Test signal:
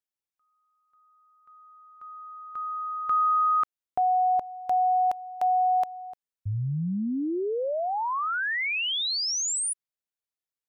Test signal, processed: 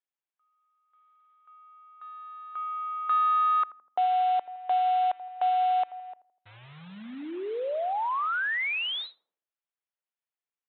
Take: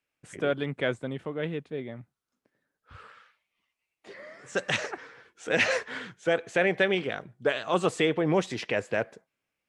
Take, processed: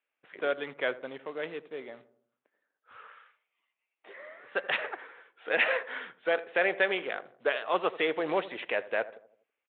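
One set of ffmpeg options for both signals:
-filter_complex "[0:a]aresample=8000,acrusher=bits=5:mode=log:mix=0:aa=0.000001,aresample=44100,highpass=500,lowpass=3.1k,asplit=2[a][b];[b]adelay=82,lowpass=f=950:p=1,volume=-15dB,asplit=2[c][d];[d]adelay=82,lowpass=f=950:p=1,volume=0.53,asplit=2[e][f];[f]adelay=82,lowpass=f=950:p=1,volume=0.53,asplit=2[g][h];[h]adelay=82,lowpass=f=950:p=1,volume=0.53,asplit=2[i][j];[j]adelay=82,lowpass=f=950:p=1,volume=0.53[k];[a][c][e][g][i][k]amix=inputs=6:normalize=0"

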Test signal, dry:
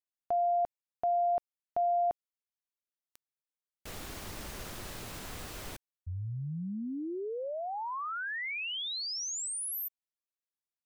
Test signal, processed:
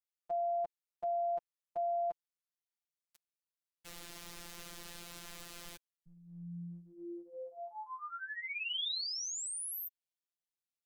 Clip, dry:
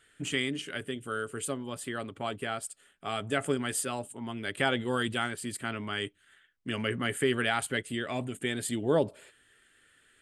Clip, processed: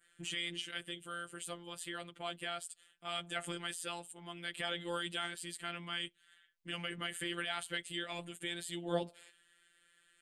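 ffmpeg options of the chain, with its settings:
-af "crystalizer=i=6.5:c=0,adynamicequalizer=threshold=0.0126:dfrequency=3400:dqfactor=1.6:tfrequency=3400:tqfactor=1.6:attack=5:release=100:ratio=0.375:range=2.5:mode=boostabove:tftype=bell,alimiter=limit=-12.5dB:level=0:latency=1:release=36,aemphasis=mode=reproduction:type=75kf,afftfilt=real='hypot(re,im)*cos(PI*b)':imag='0':win_size=1024:overlap=0.75,volume=-6.5dB"

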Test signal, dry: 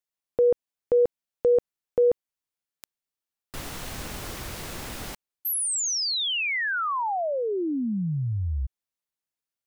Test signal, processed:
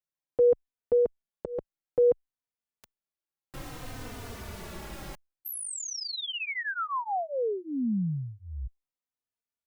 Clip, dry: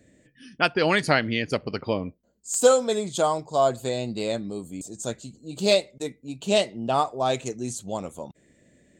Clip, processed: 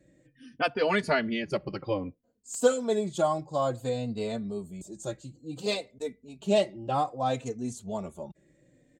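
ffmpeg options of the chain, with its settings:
-filter_complex "[0:a]highshelf=f=2k:g=-7,asplit=2[a][b];[b]adelay=3.2,afreqshift=-0.59[c];[a][c]amix=inputs=2:normalize=1"

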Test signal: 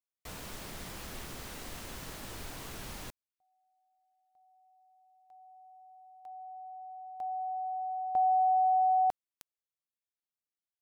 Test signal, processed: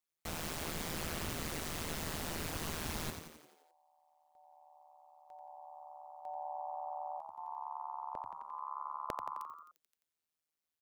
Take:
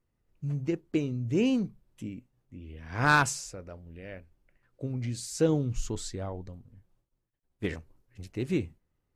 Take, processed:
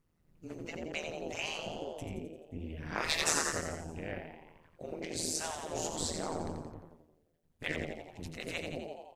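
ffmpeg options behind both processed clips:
-filter_complex "[0:a]asplit=8[a][b][c][d][e][f][g][h];[b]adelay=87,afreqshift=69,volume=-7dB[i];[c]adelay=174,afreqshift=138,volume=-11.9dB[j];[d]adelay=261,afreqshift=207,volume=-16.8dB[k];[e]adelay=348,afreqshift=276,volume=-21.6dB[l];[f]adelay=435,afreqshift=345,volume=-26.5dB[m];[g]adelay=522,afreqshift=414,volume=-31.4dB[n];[h]adelay=609,afreqshift=483,volume=-36.3dB[o];[a][i][j][k][l][m][n][o]amix=inputs=8:normalize=0,afftfilt=real='re*lt(hypot(re,im),0.0891)':imag='im*lt(hypot(re,im),0.0891)':win_size=1024:overlap=0.75,tremolo=f=160:d=0.889,volume=6.5dB"

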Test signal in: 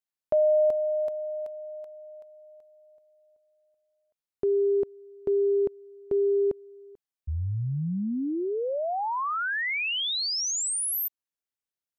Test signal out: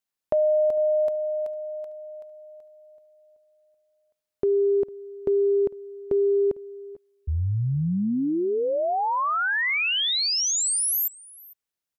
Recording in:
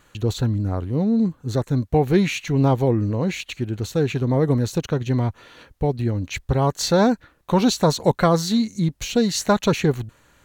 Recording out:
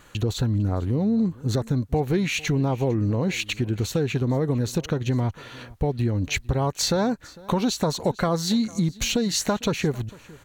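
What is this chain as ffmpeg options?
-filter_complex "[0:a]acompressor=threshold=-23dB:ratio=5:attack=5:release=238:knee=1:detection=rms,asplit=2[a][b];[b]aecho=0:1:452:0.075[c];[a][c]amix=inputs=2:normalize=0,volume=4.5dB"

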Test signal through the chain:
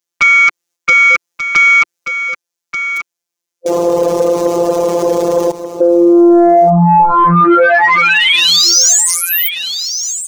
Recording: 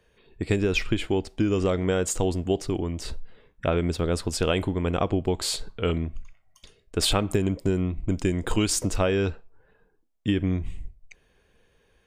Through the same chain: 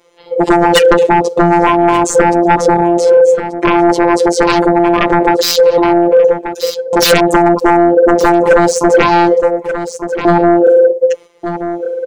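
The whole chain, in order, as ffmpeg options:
-filter_complex "[0:a]agate=range=-7dB:threshold=-59dB:ratio=16:detection=peak,afwtdn=0.0282,aeval=exprs='val(0)*sin(2*PI*490*n/s)':c=same,acrossover=split=7800[a][b];[b]acompressor=threshold=-46dB:ratio=4:attack=1:release=60[c];[a][c]amix=inputs=2:normalize=0,equalizer=f=160:t=o:w=0.67:g=-5,equalizer=f=400:t=o:w=0.67:g=7,equalizer=f=6.3k:t=o:w=0.67:g=8,asplit=2[d][e];[e]acompressor=threshold=-35dB:ratio=6,volume=-0.5dB[f];[d][f]amix=inputs=2:normalize=0,highpass=89,afftfilt=real='hypot(re,im)*cos(PI*b)':imag='0':win_size=1024:overlap=0.75,aeval=exprs='0.376*sin(PI/2*3.98*val(0)/0.376)':c=same,asplit=2[g][h];[h]aecho=0:1:1183:0.0891[i];[g][i]amix=inputs=2:normalize=0,alimiter=level_in=18.5dB:limit=-1dB:release=50:level=0:latency=1,volume=-1dB"

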